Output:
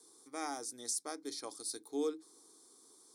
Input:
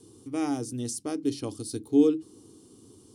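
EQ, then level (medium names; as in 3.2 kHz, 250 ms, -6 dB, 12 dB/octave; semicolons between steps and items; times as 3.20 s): high-pass 790 Hz 12 dB/octave; Butterworth band-stop 2.8 kHz, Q 2.5; -1.0 dB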